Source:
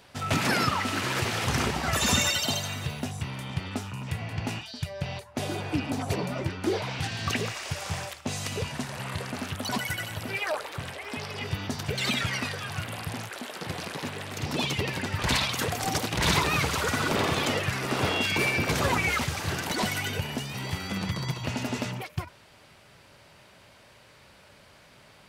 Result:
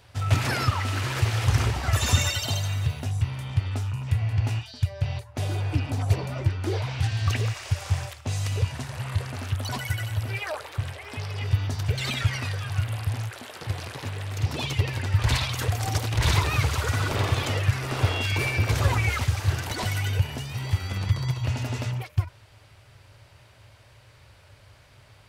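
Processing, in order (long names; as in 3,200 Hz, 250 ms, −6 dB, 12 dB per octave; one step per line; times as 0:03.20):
low shelf with overshoot 140 Hz +8 dB, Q 3
level −2 dB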